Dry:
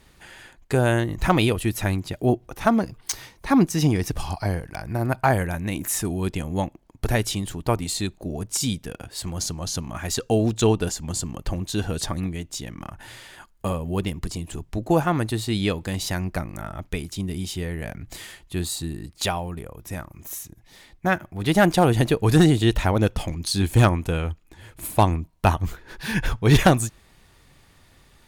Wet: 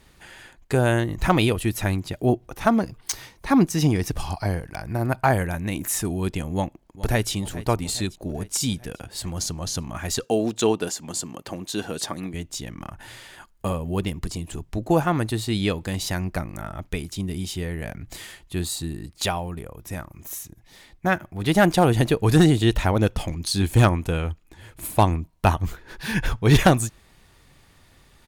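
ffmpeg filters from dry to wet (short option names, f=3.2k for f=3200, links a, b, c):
-filter_complex "[0:a]asplit=2[a][b];[b]afade=t=in:st=6.54:d=0.01,afade=t=out:st=7.31:d=0.01,aecho=0:1:420|840|1260|1680|2100|2520|2940:0.149624|0.0972553|0.063216|0.0410904|0.0267087|0.0173607|0.0112844[c];[a][c]amix=inputs=2:normalize=0,asettb=1/sr,asplit=3[d][e][f];[d]atrim=end=10.244[g];[e]atrim=start=10.24:end=12.34,asetpts=PTS-STARTPTS,afade=t=in:d=0.004:c=qsin,afade=t=out:st=2.096:d=0.004:c=qsin,highpass=220[h];[f]atrim=start=12.336[i];[g][h]acrossfade=d=0.004:c1=hsin:c2=qsin[j];[j][i]acrossfade=d=0.004:c1=qsin:c2=hsin"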